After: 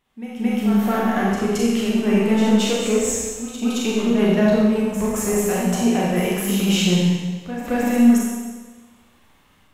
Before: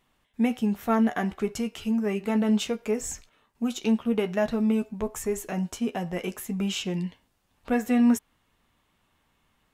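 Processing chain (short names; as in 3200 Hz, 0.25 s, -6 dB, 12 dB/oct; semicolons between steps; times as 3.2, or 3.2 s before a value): in parallel at -3 dB: limiter -22.5 dBFS, peak gain reduction 10 dB; on the sum: AGC gain up to 11.5 dB; flange 1.9 Hz, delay 9.4 ms, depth 5.3 ms, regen +83%; soft clip -9 dBFS, distortion -21 dB; on a send: reverse echo 0.221 s -9.5 dB; on the sum: Schroeder reverb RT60 1.3 s, combs from 30 ms, DRR -4 dB; gain -4.5 dB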